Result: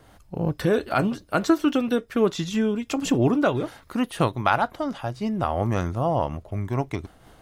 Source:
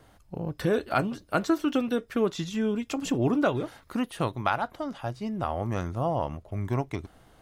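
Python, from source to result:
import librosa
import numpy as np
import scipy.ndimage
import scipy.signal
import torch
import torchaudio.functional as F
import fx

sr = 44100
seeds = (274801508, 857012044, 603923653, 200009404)

y = fx.am_noise(x, sr, seeds[0], hz=5.7, depth_pct=60)
y = y * 10.0 ** (8.5 / 20.0)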